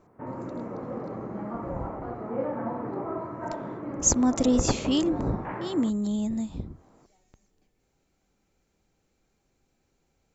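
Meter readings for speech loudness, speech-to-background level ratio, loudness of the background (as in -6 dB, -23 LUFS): -26.0 LUFS, 9.0 dB, -35.0 LUFS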